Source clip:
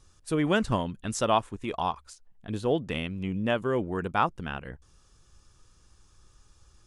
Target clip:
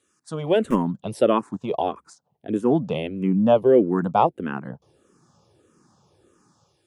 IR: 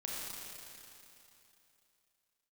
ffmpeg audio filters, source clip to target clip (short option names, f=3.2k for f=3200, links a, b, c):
-filter_complex "[0:a]acrossover=split=140|920[a][b][c];[a]acrusher=bits=4:mix=0:aa=0.000001[d];[b]dynaudnorm=f=140:g=7:m=15.5dB[e];[d][e][c]amix=inputs=3:normalize=0,asplit=2[f][g];[g]afreqshift=-1.6[h];[f][h]amix=inputs=2:normalize=1"